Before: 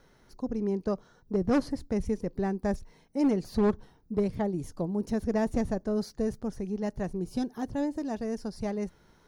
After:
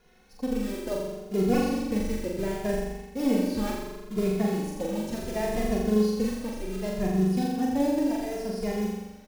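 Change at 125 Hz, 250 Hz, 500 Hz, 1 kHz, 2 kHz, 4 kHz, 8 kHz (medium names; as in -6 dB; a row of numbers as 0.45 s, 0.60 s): +3.5 dB, +3.0 dB, +2.5 dB, +3.0 dB, +5.0 dB, +8.0 dB, +8.5 dB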